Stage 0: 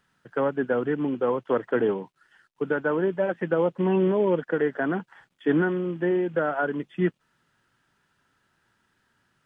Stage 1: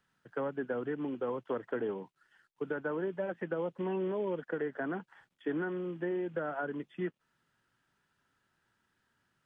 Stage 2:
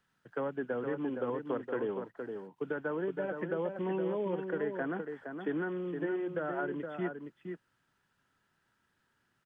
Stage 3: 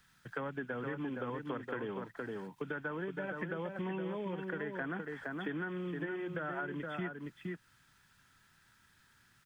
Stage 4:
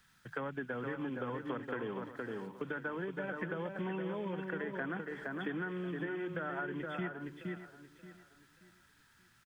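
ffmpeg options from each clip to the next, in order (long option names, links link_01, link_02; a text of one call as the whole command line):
ffmpeg -i in.wav -filter_complex "[0:a]acrossover=split=280|2800[link_01][link_02][link_03];[link_01]acompressor=threshold=-35dB:ratio=4[link_04];[link_02]acompressor=threshold=-25dB:ratio=4[link_05];[link_03]acompressor=threshold=-56dB:ratio=4[link_06];[link_04][link_05][link_06]amix=inputs=3:normalize=0,volume=-7.5dB" out.wav
ffmpeg -i in.wav -filter_complex "[0:a]asplit=2[link_01][link_02];[link_02]adelay=466.5,volume=-6dB,highshelf=frequency=4000:gain=-10.5[link_03];[link_01][link_03]amix=inputs=2:normalize=0" out.wav
ffmpeg -i in.wav -af "equalizer=frequency=470:width_type=o:width=2.7:gain=-13.5,bandreject=frequency=2900:width=14,acompressor=threshold=-52dB:ratio=3,volume=14dB" out.wav
ffmpeg -i in.wav -af "bandreject=frequency=50:width_type=h:width=6,bandreject=frequency=100:width_type=h:width=6,bandreject=frequency=150:width_type=h:width=6,aecho=1:1:579|1158|1737:0.224|0.0694|0.0215" out.wav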